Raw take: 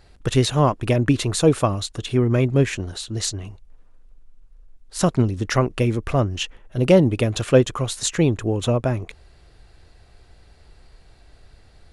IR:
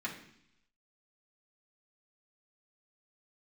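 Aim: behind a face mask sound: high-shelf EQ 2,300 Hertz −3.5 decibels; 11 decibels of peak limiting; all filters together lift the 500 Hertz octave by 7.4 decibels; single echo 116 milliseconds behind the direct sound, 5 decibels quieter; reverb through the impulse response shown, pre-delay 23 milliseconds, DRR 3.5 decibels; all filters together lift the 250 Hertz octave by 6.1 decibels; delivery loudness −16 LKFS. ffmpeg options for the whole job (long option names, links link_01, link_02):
-filter_complex "[0:a]equalizer=frequency=250:width_type=o:gain=5.5,equalizer=frequency=500:width_type=o:gain=7.5,alimiter=limit=-7dB:level=0:latency=1,aecho=1:1:116:0.562,asplit=2[link_01][link_02];[1:a]atrim=start_sample=2205,adelay=23[link_03];[link_02][link_03]afir=irnorm=-1:irlink=0,volume=-6.5dB[link_04];[link_01][link_04]amix=inputs=2:normalize=0,highshelf=frequency=2300:gain=-3.5,volume=1dB"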